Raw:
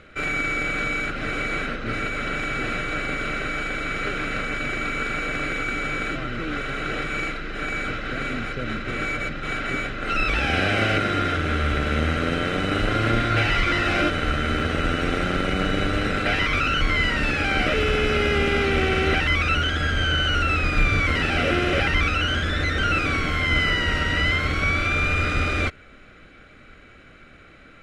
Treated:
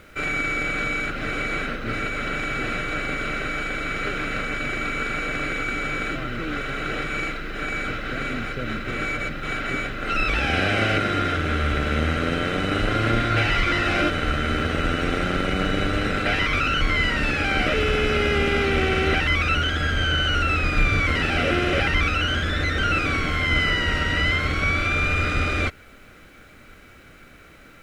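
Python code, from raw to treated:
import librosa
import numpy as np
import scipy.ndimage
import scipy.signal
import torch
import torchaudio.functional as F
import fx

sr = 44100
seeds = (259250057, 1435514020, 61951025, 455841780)

y = fx.dmg_noise_colour(x, sr, seeds[0], colour='pink', level_db=-58.0)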